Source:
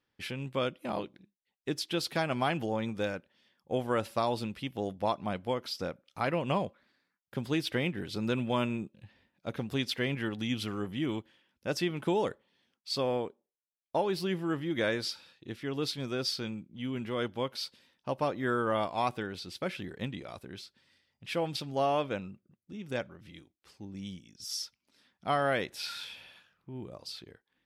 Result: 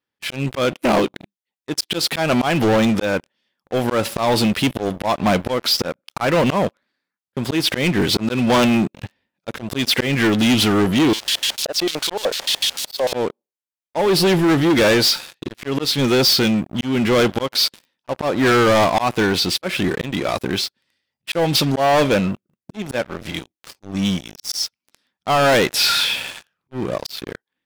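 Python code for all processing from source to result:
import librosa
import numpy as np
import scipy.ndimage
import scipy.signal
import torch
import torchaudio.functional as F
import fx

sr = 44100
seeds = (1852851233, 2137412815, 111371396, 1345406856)

y = fx.chain(x, sr, fx.crossing_spikes(level_db=-24.0),
    fx.filter_lfo_bandpass(shape='square', hz=6.7, low_hz=650.0, high_hz=3800.0, q=2.4), at=(11.13, 13.13))
y = fx.low_shelf(y, sr, hz=98.0, db=-10.0)
y = fx.auto_swell(y, sr, attack_ms=260.0)
y = fx.leveller(y, sr, passes=5)
y = y * librosa.db_to_amplitude(7.0)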